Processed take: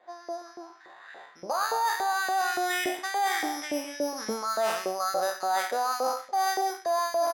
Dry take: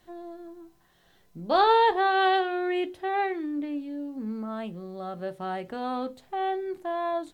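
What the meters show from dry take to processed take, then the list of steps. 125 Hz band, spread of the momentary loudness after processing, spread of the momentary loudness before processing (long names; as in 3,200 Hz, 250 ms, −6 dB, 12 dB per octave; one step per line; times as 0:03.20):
below −10 dB, 14 LU, 17 LU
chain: peak hold with a decay on every bin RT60 0.76 s
camcorder AGC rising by 11 dB per second
bad sample-rate conversion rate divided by 8×, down filtered, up hold
auto-filter high-pass saw up 3.5 Hz 520–1,900 Hz
in parallel at −11.5 dB: asymmetric clip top −11.5 dBFS
on the sum: single-tap delay 128 ms −16.5 dB
reversed playback
downward compressor 12 to 1, threshold −24 dBFS, peak gain reduction 15.5 dB
reversed playback
low-pass that shuts in the quiet parts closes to 3,000 Hz, open at −26 dBFS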